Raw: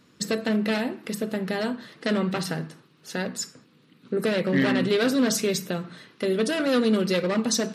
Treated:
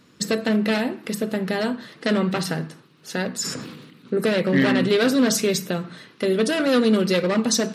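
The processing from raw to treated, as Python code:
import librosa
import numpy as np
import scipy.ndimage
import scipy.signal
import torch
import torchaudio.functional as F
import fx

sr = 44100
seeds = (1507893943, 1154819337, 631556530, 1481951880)

y = fx.sustainer(x, sr, db_per_s=45.0, at=(3.43, 4.13), fade=0.02)
y = y * 10.0 ** (3.5 / 20.0)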